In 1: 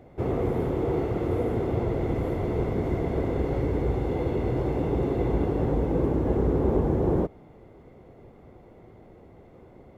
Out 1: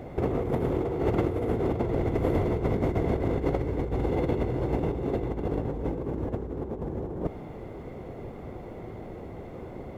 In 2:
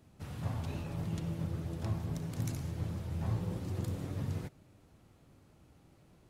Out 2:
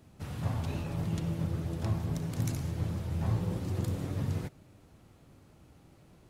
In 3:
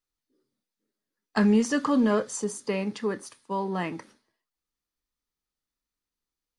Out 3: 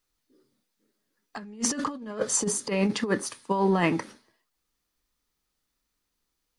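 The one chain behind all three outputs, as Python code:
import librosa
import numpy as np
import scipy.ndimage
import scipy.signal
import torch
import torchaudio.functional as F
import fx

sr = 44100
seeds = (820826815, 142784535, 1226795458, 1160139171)

y = fx.over_compress(x, sr, threshold_db=-30.0, ratio=-0.5)
y = y * librosa.db_to_amplitude(4.0)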